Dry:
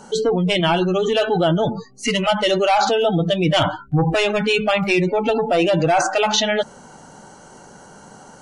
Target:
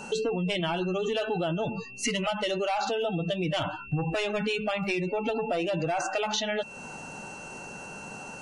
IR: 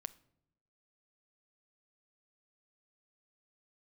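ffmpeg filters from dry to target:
-af "acompressor=threshold=-27dB:ratio=6,aeval=exprs='val(0)+0.00708*sin(2*PI*2700*n/s)':c=same"

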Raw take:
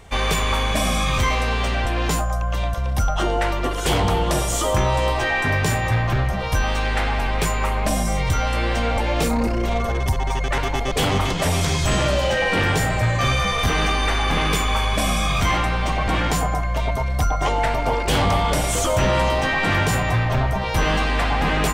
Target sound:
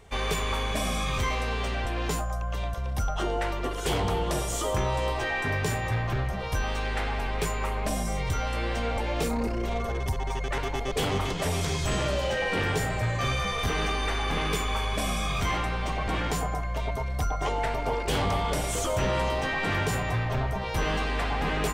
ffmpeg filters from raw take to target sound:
-af "equalizer=f=420:t=o:w=0.21:g=7,volume=-8dB"

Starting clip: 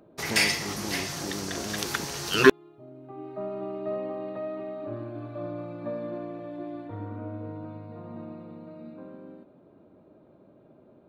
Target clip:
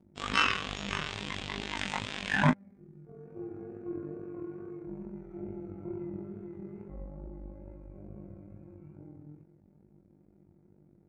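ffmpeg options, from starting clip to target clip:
-filter_complex "[0:a]afftfilt=real='hypot(re,im)*cos(PI*b)':imag='0':win_size=2048:overlap=0.75,flanger=delay=19.5:depth=7.7:speed=2.3,asetrate=25476,aresample=44100,atempo=1.73107,asplit=2[a][b];[b]asoftclip=type=tanh:threshold=-19dB,volume=-7dB[c];[a][c]amix=inputs=2:normalize=0,adynamicequalizer=threshold=0.00355:dfrequency=2000:dqfactor=1.3:tfrequency=2000:tqfactor=1.3:attack=5:release=100:ratio=0.375:range=3:mode=boostabove:tftype=bell,volume=-2dB"

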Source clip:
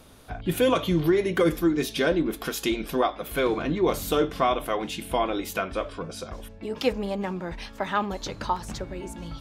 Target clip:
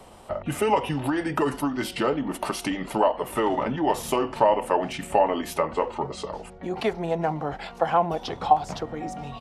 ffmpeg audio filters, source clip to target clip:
-filter_complex "[0:a]asetrate=37084,aresample=44100,atempo=1.18921,acrossover=split=85|740[a][b][c];[a]acompressor=threshold=-50dB:ratio=4[d];[b]acompressor=threshold=-27dB:ratio=4[e];[c]acompressor=threshold=-31dB:ratio=4[f];[d][e][f]amix=inputs=3:normalize=0,equalizer=f=760:w=1.2:g=12.5"

